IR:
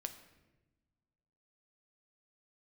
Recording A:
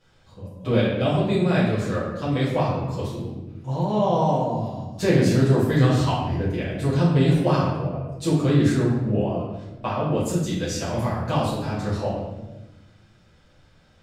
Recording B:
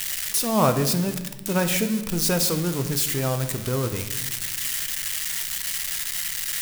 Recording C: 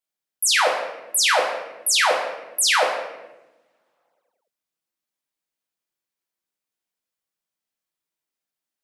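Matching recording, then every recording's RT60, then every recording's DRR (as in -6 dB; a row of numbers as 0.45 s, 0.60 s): B; 1.0 s, 1.1 s, 1.0 s; -10.5 dB, 7.0 dB, -1.5 dB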